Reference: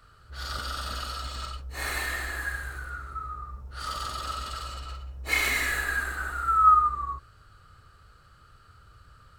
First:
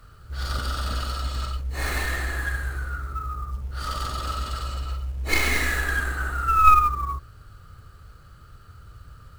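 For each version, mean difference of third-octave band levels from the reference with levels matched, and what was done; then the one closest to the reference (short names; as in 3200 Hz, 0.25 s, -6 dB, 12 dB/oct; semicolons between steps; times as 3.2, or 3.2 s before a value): 3.5 dB: tracing distortion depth 0.084 ms; companded quantiser 6-bit; low shelf 450 Hz +8.5 dB; gain +1.5 dB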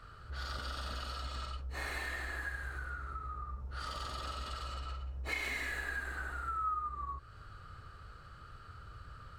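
5.5 dB: LPF 3400 Hz 6 dB/oct; dynamic EQ 1300 Hz, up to -6 dB, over -40 dBFS, Q 3.8; compressor 2.5:1, threshold -45 dBFS, peak gain reduction 16.5 dB; gain +3.5 dB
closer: first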